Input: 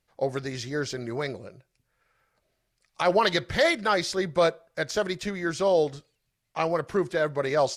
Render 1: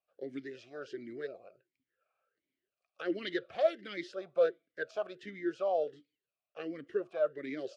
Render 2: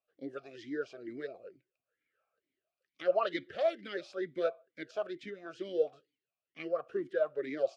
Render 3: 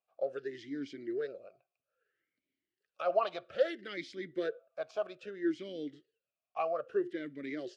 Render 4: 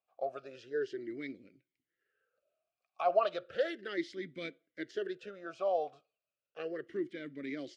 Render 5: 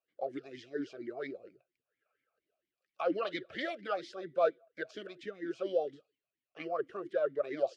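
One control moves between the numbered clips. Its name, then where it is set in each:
talking filter, rate: 1.4 Hz, 2.2 Hz, 0.61 Hz, 0.34 Hz, 4.3 Hz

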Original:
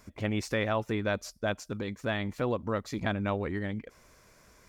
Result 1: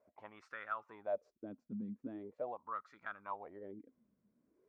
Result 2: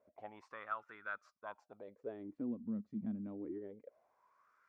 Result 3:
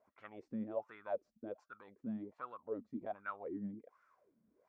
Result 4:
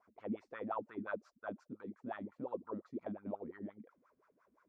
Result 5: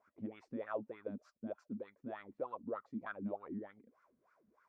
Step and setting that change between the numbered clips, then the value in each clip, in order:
wah-wah, rate: 0.42 Hz, 0.26 Hz, 1.3 Hz, 5.7 Hz, 3.3 Hz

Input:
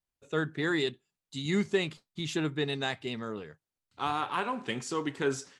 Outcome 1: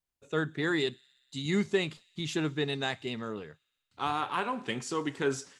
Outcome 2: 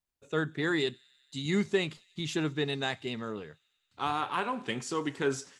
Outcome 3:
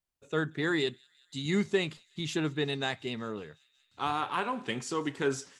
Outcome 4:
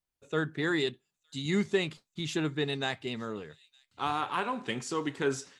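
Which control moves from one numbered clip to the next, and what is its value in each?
feedback echo behind a high-pass, time: 61 ms, 92 ms, 183 ms, 913 ms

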